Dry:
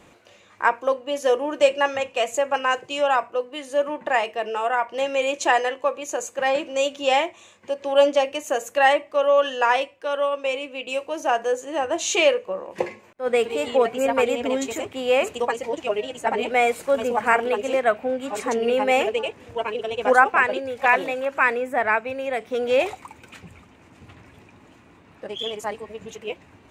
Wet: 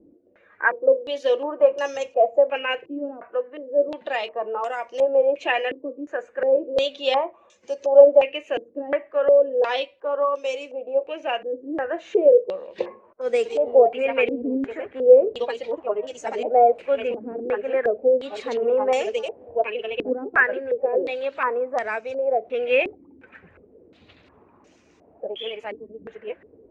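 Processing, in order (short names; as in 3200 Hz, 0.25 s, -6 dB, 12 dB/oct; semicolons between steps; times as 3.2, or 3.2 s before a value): bin magnitudes rounded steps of 15 dB; ten-band EQ 125 Hz -8 dB, 500 Hz +7 dB, 1000 Hz -5 dB; stepped low-pass 2.8 Hz 300–6000 Hz; gain -6 dB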